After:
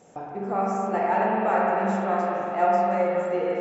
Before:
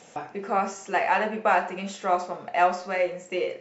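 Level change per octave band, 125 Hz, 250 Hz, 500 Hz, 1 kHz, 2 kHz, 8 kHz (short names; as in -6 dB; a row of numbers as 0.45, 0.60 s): +8.0 dB, +6.0 dB, +3.0 dB, +1.5 dB, -4.0 dB, n/a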